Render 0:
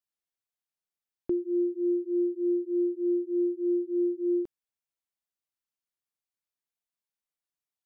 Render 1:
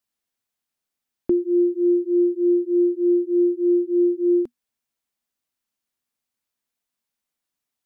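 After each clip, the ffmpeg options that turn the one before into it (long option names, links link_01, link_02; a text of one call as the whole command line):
ffmpeg -i in.wav -af "equalizer=frequency=240:width_type=o:width=0.24:gain=9,volume=8dB" out.wav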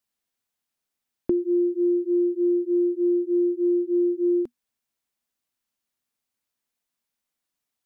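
ffmpeg -i in.wav -af "acompressor=threshold=-19dB:ratio=6" out.wav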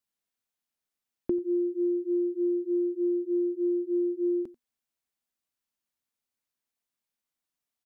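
ffmpeg -i in.wav -af "aecho=1:1:90:0.1,volume=-5dB" out.wav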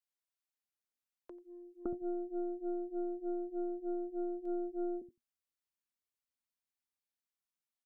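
ffmpeg -i in.wav -filter_complex "[0:a]acrossover=split=180|540[link_01][link_02][link_03];[link_02]adelay=560[link_04];[link_01]adelay=630[link_05];[link_05][link_04][link_03]amix=inputs=3:normalize=0,aeval=exprs='0.1*(cos(1*acos(clip(val(0)/0.1,-1,1)))-cos(1*PI/2))+0.00141*(cos(3*acos(clip(val(0)/0.1,-1,1)))-cos(3*PI/2))+0.0141*(cos(4*acos(clip(val(0)/0.1,-1,1)))-cos(4*PI/2))':channel_layout=same,volume=-7.5dB" out.wav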